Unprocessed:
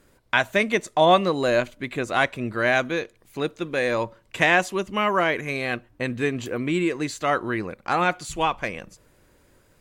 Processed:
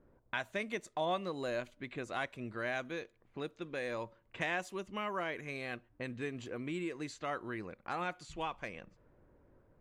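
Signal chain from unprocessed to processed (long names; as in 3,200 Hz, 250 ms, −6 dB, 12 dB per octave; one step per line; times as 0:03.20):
downward compressor 1.5 to 1, threshold −48 dBFS, peak gain reduction 13 dB
low-pass that shuts in the quiet parts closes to 830 Hz, open at −31 dBFS
level −5.5 dB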